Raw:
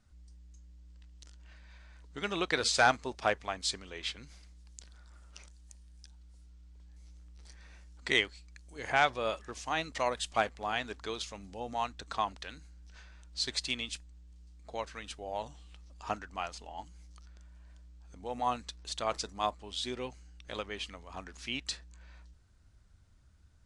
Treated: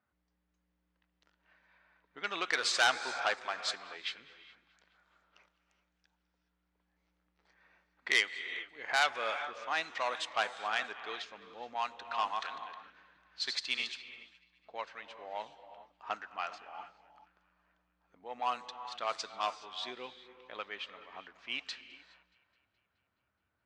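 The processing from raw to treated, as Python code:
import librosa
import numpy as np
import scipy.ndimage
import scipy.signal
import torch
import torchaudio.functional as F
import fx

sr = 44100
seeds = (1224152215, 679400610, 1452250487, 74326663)

y = fx.reverse_delay(x, sr, ms=294, wet_db=-5.0, at=(11.7, 13.91))
y = fx.dynamic_eq(y, sr, hz=1600.0, q=0.71, threshold_db=-43.0, ratio=4.0, max_db=6)
y = fx.echo_wet_highpass(y, sr, ms=211, feedback_pct=66, hz=1600.0, wet_db=-20)
y = fx.rev_gated(y, sr, seeds[0], gate_ms=450, shape='rising', drr_db=11.5)
y = fx.env_lowpass(y, sr, base_hz=1700.0, full_db=-23.5)
y = fx.weighting(y, sr, curve='A')
y = fx.transformer_sat(y, sr, knee_hz=3600.0)
y = F.gain(torch.from_numpy(y), -3.5).numpy()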